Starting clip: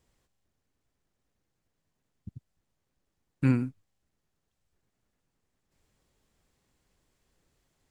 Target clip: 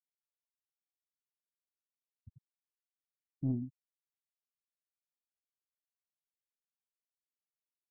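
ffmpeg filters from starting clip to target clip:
ffmpeg -i in.wav -af "afftfilt=real='re*gte(hypot(re,im),0.1)':imag='im*gte(hypot(re,im),0.1)':win_size=1024:overlap=0.75,asoftclip=type=tanh:threshold=-15dB,volume=-8dB" out.wav

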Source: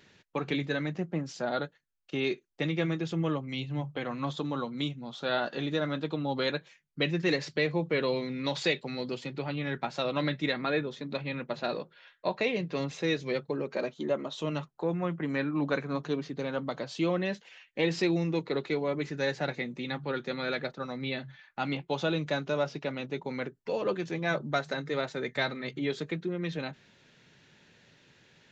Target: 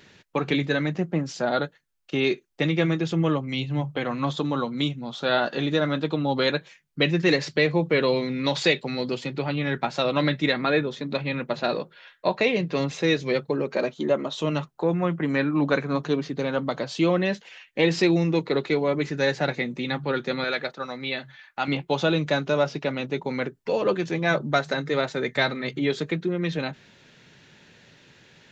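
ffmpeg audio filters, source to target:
ffmpeg -i in.wav -filter_complex "[0:a]asettb=1/sr,asplit=3[link_01][link_02][link_03];[link_01]atrim=end=20.444[link_04];[link_02]atrim=start=20.44:end=21.68,asetpts=PTS-STARTPTS,afade=type=in:duration=0.004:curve=qsin,afade=type=out:start_time=1.236:duration=0.004:curve=qsin,lowshelf=frequency=320:gain=-11.5[link_05];[link_03]atrim=start=21.676[link_06];[link_04][link_05]acrossfade=duration=0.004:curve1=hsin:curve2=qsin[link_07];[link_07][link_06]acrossfade=duration=0.004:curve1=qsin:curve2=hsin,volume=7dB" out.wav

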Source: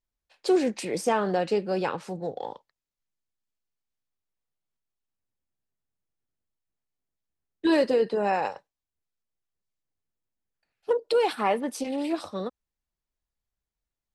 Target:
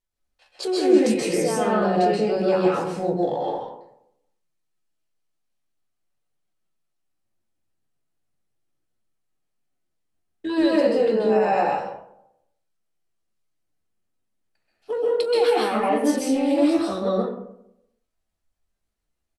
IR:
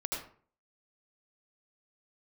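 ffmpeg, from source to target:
-filter_complex "[0:a]bandreject=frequency=60:width_type=h:width=6,bandreject=frequency=120:width_type=h:width=6,bandreject=frequency=180:width_type=h:width=6,bandreject=frequency=240:width_type=h:width=6,alimiter=limit=-21.5dB:level=0:latency=1:release=53,asplit=2[link_01][link_02];[link_02]adelay=14,volume=-11.5dB[link_03];[link_01][link_03]amix=inputs=2:normalize=0,atempo=0.73[link_04];[1:a]atrim=start_sample=2205,asetrate=24696,aresample=44100[link_05];[link_04][link_05]afir=irnorm=-1:irlink=0,volume=1dB"

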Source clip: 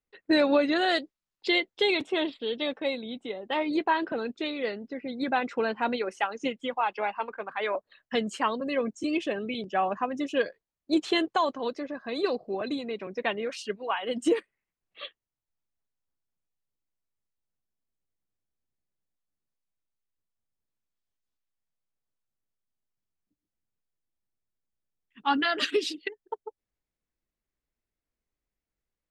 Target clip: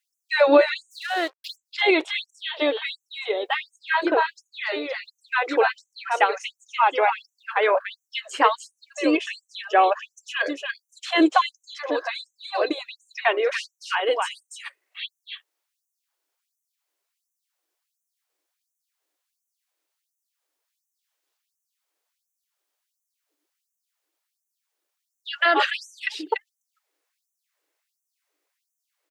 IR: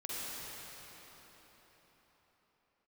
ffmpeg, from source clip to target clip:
-filter_complex "[0:a]aecho=1:1:290:0.447,asplit=2[link_01][link_02];[link_02]acompressor=threshold=-36dB:ratio=5,volume=0dB[link_03];[link_01][link_03]amix=inputs=2:normalize=0,asplit=3[link_04][link_05][link_06];[link_04]afade=type=out:start_time=0.9:duration=0.02[link_07];[link_05]aeval=exprs='sgn(val(0))*max(abs(val(0))-0.01,0)':channel_layout=same,afade=type=in:start_time=0.9:duration=0.02,afade=type=out:start_time=1.55:duration=0.02[link_08];[link_06]afade=type=in:start_time=1.55:duration=0.02[link_09];[link_07][link_08][link_09]amix=inputs=3:normalize=0,acrossover=split=2700[link_10][link_11];[link_11]acompressor=threshold=-43dB:ratio=4:attack=1:release=60[link_12];[link_10][link_12]amix=inputs=2:normalize=0,afftfilt=real='re*gte(b*sr/1024,260*pow(5900/260,0.5+0.5*sin(2*PI*1.4*pts/sr)))':imag='im*gte(b*sr/1024,260*pow(5900/260,0.5+0.5*sin(2*PI*1.4*pts/sr)))':win_size=1024:overlap=0.75,volume=7.5dB"

